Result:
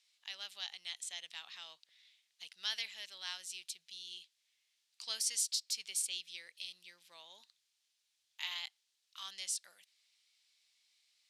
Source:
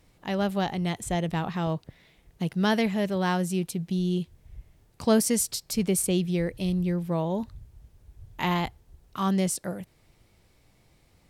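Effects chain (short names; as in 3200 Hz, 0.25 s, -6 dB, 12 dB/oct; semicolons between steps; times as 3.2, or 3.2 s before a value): ladder band-pass 4800 Hz, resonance 25%; gain +8.5 dB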